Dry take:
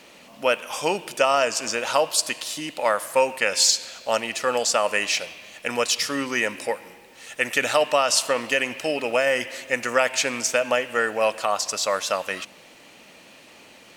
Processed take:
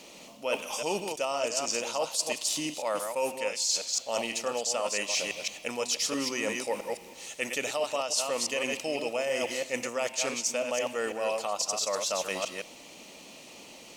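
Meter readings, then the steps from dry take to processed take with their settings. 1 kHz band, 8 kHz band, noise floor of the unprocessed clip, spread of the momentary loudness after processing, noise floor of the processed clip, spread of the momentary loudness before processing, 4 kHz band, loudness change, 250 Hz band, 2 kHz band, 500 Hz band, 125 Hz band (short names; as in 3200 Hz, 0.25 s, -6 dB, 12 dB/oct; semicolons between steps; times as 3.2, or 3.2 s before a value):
-9.5 dB, -4.5 dB, -49 dBFS, 10 LU, -49 dBFS, 8 LU, -6.5 dB, -7.5 dB, -5.0 dB, -10.0 dB, -7.0 dB, -6.5 dB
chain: reverse delay 0.166 s, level -6 dB; fifteen-band EQ 100 Hz -6 dB, 1600 Hz -11 dB, 6300 Hz +5 dB; reverse; compressor 6:1, threshold -27 dBFS, peak gain reduction 15 dB; reverse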